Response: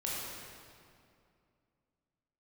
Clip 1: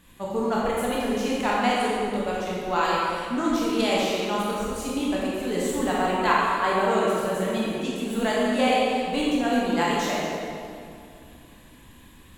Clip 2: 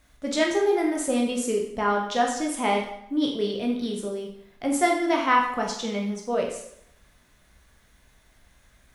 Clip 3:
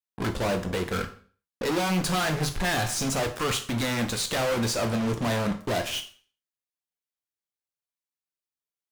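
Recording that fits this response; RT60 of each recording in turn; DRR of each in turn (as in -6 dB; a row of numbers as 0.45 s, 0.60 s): 1; 2.4 s, 0.75 s, 0.40 s; -6.5 dB, -0.5 dB, 5.0 dB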